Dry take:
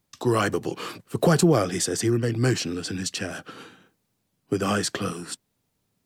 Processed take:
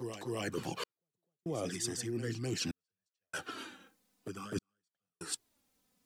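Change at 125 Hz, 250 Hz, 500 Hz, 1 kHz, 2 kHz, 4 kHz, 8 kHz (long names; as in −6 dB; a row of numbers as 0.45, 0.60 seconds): −16.5, −15.5, −16.0, −16.5, −13.0, −11.0, −11.0 decibels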